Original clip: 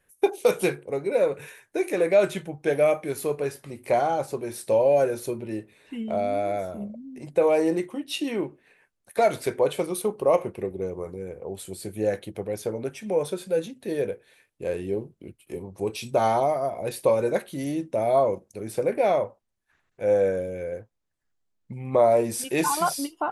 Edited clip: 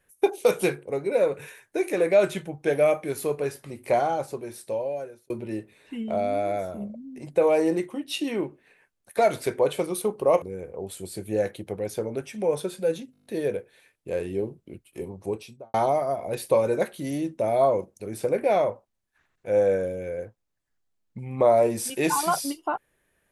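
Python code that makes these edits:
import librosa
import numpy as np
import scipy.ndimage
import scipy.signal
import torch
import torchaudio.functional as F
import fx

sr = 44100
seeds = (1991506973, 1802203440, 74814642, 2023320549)

y = fx.studio_fade_out(x, sr, start_s=15.71, length_s=0.57)
y = fx.edit(y, sr, fx.fade_out_span(start_s=3.95, length_s=1.35),
    fx.cut(start_s=10.42, length_s=0.68),
    fx.stutter(start_s=13.8, slice_s=0.02, count=8), tone=tone)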